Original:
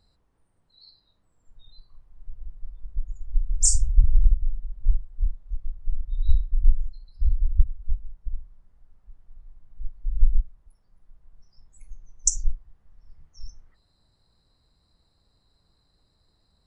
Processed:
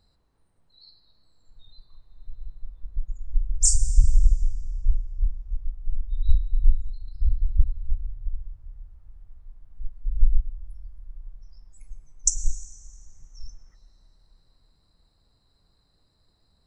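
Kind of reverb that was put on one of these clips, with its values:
comb and all-pass reverb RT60 4.3 s, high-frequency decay 0.7×, pre-delay 70 ms, DRR 11 dB

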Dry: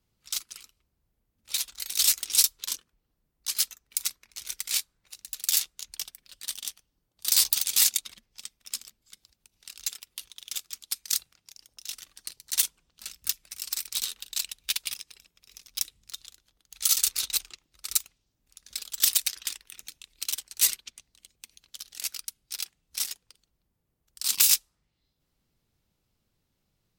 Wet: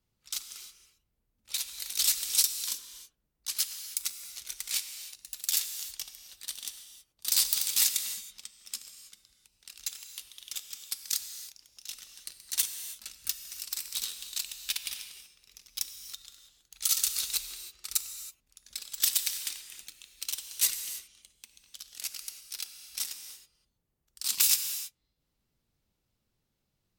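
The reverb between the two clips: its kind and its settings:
reverb whose tail is shaped and stops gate 350 ms flat, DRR 7.5 dB
level −4 dB

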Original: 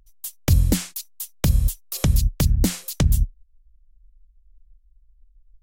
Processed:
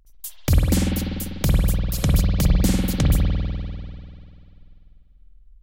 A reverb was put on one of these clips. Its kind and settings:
spring reverb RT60 2.5 s, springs 49 ms, chirp 20 ms, DRR −3 dB
level −1.5 dB

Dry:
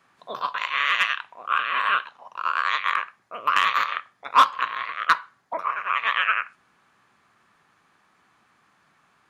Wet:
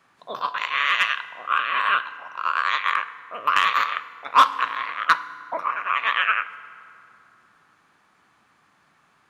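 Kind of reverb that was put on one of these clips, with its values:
feedback delay network reverb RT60 2.8 s, low-frequency decay 1.2×, high-frequency decay 0.55×, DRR 14 dB
level +1 dB

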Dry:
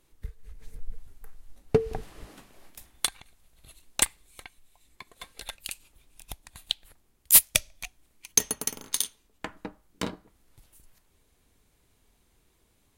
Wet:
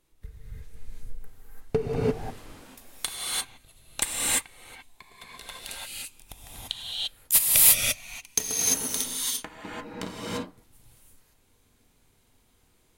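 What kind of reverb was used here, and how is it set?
reverb whose tail is shaped and stops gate 370 ms rising, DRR −6.5 dB
level −4.5 dB

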